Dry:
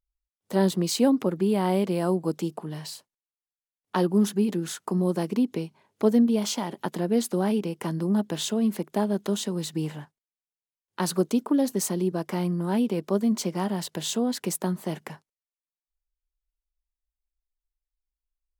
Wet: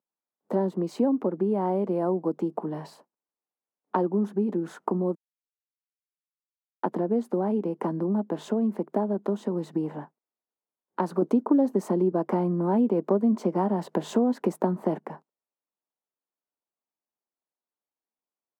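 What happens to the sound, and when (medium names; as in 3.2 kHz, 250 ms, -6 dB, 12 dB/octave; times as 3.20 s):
5.15–6.83 s: mute
11.22–14.98 s: gain +8.5 dB
whole clip: FFT filter 920 Hz 0 dB, 3.3 kHz -22 dB, 11 kHz -26 dB; compression 3:1, threshold -32 dBFS; high-pass 200 Hz 24 dB/octave; trim +8.5 dB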